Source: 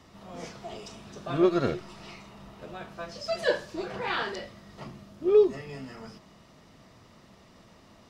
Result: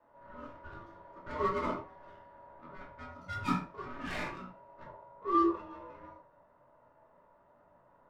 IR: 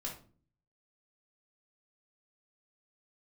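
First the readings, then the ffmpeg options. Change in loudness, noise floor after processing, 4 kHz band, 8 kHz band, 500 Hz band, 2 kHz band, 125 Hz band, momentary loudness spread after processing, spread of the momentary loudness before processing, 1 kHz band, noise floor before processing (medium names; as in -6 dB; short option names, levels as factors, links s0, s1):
-7.0 dB, -65 dBFS, -12.5 dB, no reading, -13.5 dB, -7.5 dB, -6.0 dB, 22 LU, 22 LU, +2.5 dB, -56 dBFS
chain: -filter_complex "[0:a]adynamicsmooth=sensitivity=5:basefreq=690,aeval=exprs='val(0)*sin(2*PI*760*n/s)':c=same[s0];[1:a]atrim=start_sample=2205,atrim=end_sample=6174[s1];[s0][s1]afir=irnorm=-1:irlink=0,volume=0.596"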